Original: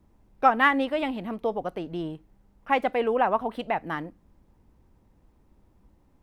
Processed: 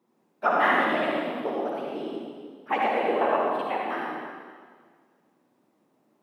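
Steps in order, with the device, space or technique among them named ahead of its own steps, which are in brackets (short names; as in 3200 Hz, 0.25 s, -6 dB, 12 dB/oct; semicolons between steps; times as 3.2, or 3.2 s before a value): whispering ghost (whisperiser; HPF 230 Hz 24 dB/oct; reverb RT60 1.8 s, pre-delay 52 ms, DRR -3 dB); gain -4.5 dB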